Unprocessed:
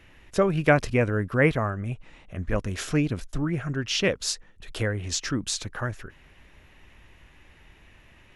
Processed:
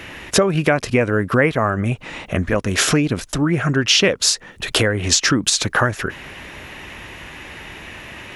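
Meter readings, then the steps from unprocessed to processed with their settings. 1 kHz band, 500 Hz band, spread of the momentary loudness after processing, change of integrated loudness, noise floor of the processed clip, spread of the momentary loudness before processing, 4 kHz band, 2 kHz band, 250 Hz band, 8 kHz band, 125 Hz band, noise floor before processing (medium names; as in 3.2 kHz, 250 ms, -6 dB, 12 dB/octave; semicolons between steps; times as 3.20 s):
+8.5 dB, +6.5 dB, 20 LU, +8.5 dB, -43 dBFS, 13 LU, +13.5 dB, +9.0 dB, +7.5 dB, +13.5 dB, +6.0 dB, -55 dBFS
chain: compression 8:1, threshold -33 dBFS, peak gain reduction 19 dB; high-pass 190 Hz 6 dB/octave; loudness maximiser +22.5 dB; trim -1 dB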